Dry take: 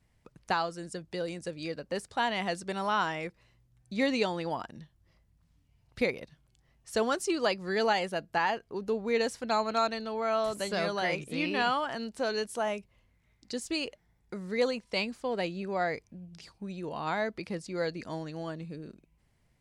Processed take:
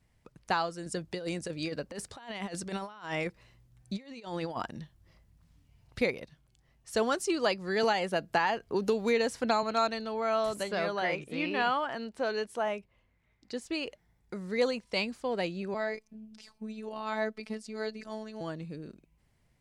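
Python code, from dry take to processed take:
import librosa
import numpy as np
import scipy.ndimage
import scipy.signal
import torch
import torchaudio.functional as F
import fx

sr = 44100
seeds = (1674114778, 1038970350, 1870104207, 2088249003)

y = fx.over_compress(x, sr, threshold_db=-36.0, ratio=-0.5, at=(0.86, 5.99))
y = fx.band_squash(y, sr, depth_pct=100, at=(7.83, 9.63))
y = fx.bass_treble(y, sr, bass_db=-4, treble_db=-9, at=(10.63, 13.87))
y = fx.robotise(y, sr, hz=217.0, at=(15.74, 18.41))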